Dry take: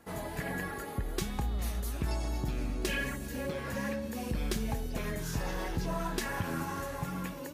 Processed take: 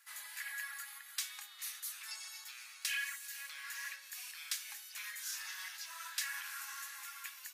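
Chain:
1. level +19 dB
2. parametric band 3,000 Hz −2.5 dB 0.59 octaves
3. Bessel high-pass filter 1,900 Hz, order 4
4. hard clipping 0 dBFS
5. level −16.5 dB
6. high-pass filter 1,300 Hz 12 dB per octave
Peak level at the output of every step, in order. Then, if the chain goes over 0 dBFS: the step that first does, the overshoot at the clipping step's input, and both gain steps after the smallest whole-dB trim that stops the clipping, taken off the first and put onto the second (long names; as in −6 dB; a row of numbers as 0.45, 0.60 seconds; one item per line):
−1.5, −1.5, −6.0, −6.0, −22.5, −22.5 dBFS
no step passes full scale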